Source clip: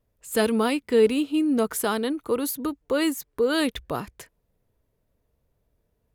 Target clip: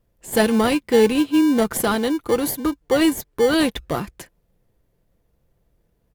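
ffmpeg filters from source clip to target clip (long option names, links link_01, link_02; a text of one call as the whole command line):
ffmpeg -i in.wav -filter_complex "[0:a]aecho=1:1:5.8:0.31,asplit=2[link_01][link_02];[link_02]acrusher=samples=34:mix=1:aa=0.000001,volume=-8dB[link_03];[link_01][link_03]amix=inputs=2:normalize=0,volume=3.5dB" out.wav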